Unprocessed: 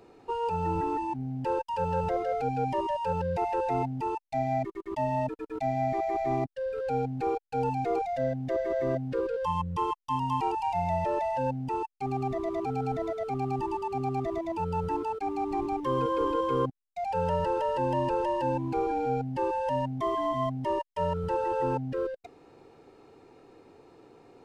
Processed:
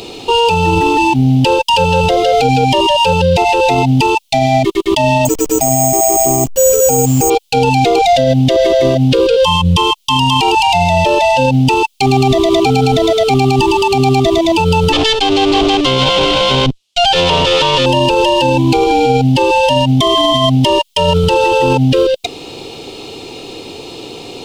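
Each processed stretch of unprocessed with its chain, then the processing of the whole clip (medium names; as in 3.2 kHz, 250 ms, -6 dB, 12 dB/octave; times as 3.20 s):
5.25–7.30 s: one-bit delta coder 32 kbps, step -41.5 dBFS + low-pass 1.2 kHz + careless resampling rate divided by 6×, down filtered, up hold
14.92–17.86 s: comb filter that takes the minimum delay 7.4 ms + low-pass 6.6 kHz
whole clip: resonant high shelf 2.3 kHz +11 dB, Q 3; loudness maximiser +26.5 dB; trim -2 dB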